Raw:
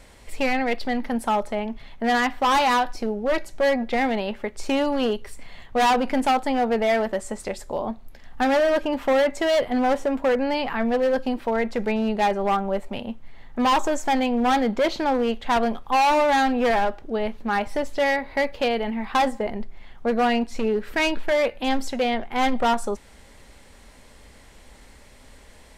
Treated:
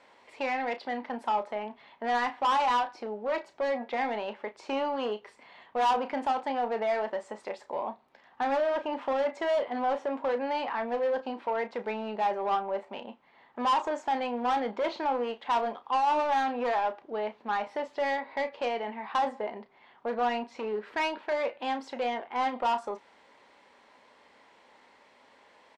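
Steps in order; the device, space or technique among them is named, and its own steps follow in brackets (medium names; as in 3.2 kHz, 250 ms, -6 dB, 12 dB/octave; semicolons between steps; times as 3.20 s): intercom (band-pass 340–3700 Hz; peaking EQ 960 Hz +7 dB 0.5 oct; saturation -15 dBFS, distortion -14 dB; doubling 33 ms -11 dB); trim -6.5 dB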